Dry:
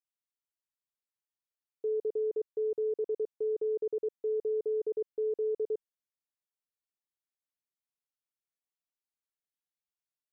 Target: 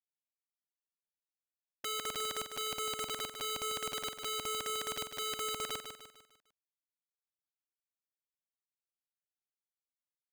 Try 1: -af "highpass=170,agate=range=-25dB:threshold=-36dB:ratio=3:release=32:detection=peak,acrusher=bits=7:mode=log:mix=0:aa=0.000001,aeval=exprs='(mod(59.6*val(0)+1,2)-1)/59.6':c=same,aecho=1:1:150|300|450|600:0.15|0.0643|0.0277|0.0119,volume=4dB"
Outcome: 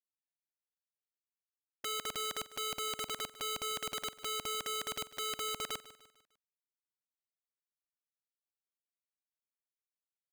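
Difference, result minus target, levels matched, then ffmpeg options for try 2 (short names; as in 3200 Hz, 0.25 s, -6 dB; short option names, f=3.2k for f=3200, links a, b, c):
echo-to-direct -9 dB
-af "highpass=170,agate=range=-25dB:threshold=-36dB:ratio=3:release=32:detection=peak,acrusher=bits=7:mode=log:mix=0:aa=0.000001,aeval=exprs='(mod(59.6*val(0)+1,2)-1)/59.6':c=same,aecho=1:1:150|300|450|600|750:0.422|0.181|0.078|0.0335|0.0144,volume=4dB"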